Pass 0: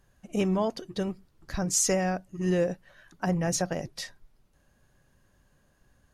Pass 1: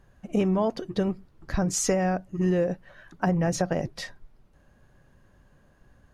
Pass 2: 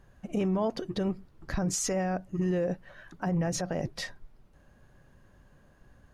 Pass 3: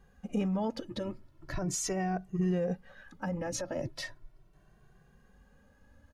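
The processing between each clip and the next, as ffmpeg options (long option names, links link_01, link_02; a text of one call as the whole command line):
ffmpeg -i in.wav -af "highshelf=frequency=3400:gain=-12,acompressor=threshold=-27dB:ratio=6,volume=7dB" out.wav
ffmpeg -i in.wav -af "alimiter=limit=-21dB:level=0:latency=1:release=69" out.wav
ffmpeg -i in.wav -filter_complex "[0:a]asplit=2[link_01][link_02];[link_02]adelay=2.1,afreqshift=0.38[link_03];[link_01][link_03]amix=inputs=2:normalize=1" out.wav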